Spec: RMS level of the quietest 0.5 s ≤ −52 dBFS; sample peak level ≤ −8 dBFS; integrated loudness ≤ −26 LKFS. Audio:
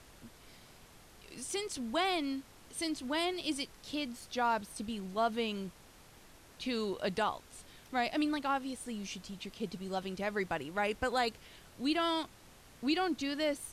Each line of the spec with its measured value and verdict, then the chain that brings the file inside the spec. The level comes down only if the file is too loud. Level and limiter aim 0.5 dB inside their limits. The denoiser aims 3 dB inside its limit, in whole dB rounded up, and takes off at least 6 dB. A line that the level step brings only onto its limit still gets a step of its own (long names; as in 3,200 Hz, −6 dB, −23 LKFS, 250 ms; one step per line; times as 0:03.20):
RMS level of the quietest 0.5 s −58 dBFS: in spec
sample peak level −19.0 dBFS: in spec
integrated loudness −35.5 LKFS: in spec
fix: no processing needed